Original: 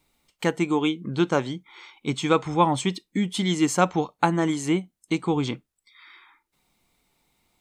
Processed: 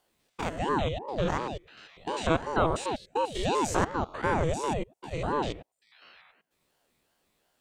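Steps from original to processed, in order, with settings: stepped spectrum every 0.1 s; ring modulator with a swept carrier 450 Hz, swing 65%, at 2.8 Hz

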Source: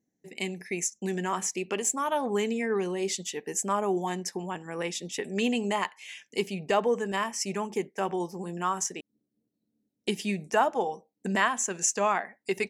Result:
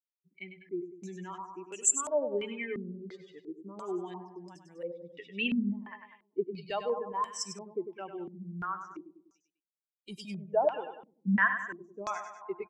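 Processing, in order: per-bin expansion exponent 2; 8.61–10.51 transient shaper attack -10 dB, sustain +4 dB; resonator 350 Hz, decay 0.47 s, harmonics odd, mix 60%; feedback echo 99 ms, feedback 51%, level -9 dB; stepped low-pass 2.9 Hz 210–7600 Hz; gain +2 dB

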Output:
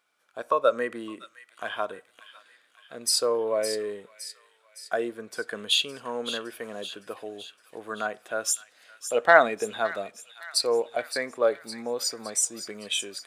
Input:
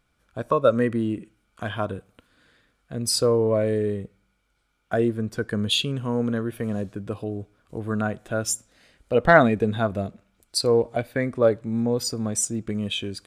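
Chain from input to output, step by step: HPF 570 Hz 12 dB/oct; thin delay 0.563 s, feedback 56%, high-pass 2300 Hz, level -10 dB; on a send at -23 dB: reverb RT60 0.45 s, pre-delay 3 ms

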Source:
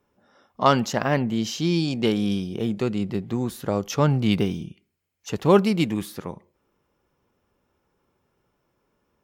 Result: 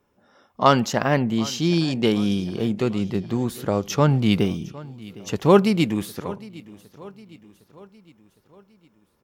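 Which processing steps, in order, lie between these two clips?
feedback echo 0.759 s, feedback 51%, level -20 dB; gain +2 dB

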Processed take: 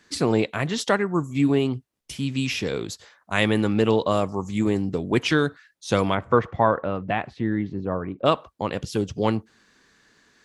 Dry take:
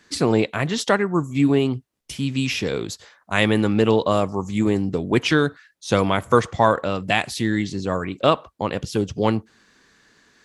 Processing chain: 6.14–8.25 LPF 2200 Hz -> 1100 Hz 12 dB/oct; gain -2.5 dB

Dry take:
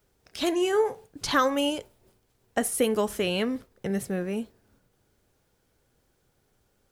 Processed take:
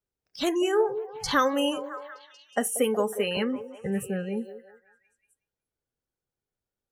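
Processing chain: spectral noise reduction 22 dB; 1.77–3.37 HPF 200 Hz 24 dB/oct; delay with a stepping band-pass 0.184 s, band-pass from 440 Hz, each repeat 0.7 oct, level -9 dB

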